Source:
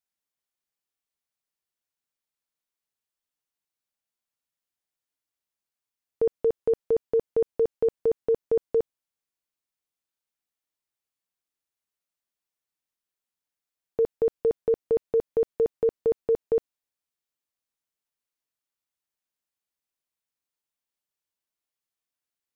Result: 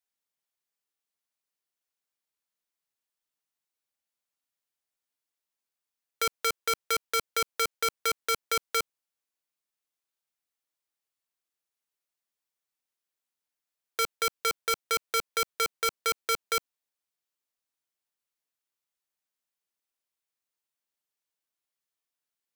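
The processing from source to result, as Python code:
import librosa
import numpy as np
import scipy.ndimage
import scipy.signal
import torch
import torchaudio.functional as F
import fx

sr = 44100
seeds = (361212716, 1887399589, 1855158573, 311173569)

y = fx.low_shelf(x, sr, hz=210.0, db=-8.0)
y = (np.mod(10.0 ** (21.5 / 20.0) * y + 1.0, 2.0) - 1.0) / 10.0 ** (21.5 / 20.0)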